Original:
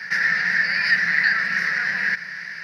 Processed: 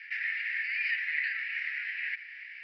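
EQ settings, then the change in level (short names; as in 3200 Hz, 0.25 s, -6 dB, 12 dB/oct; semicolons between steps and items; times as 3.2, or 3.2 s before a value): Butterworth band-pass 2600 Hz, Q 2.9; -1.5 dB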